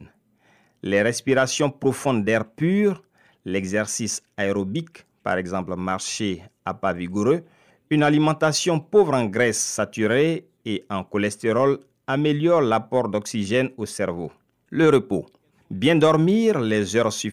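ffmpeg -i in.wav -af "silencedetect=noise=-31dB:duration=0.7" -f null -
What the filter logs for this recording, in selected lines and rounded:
silence_start: 0.00
silence_end: 0.84 | silence_duration: 0.84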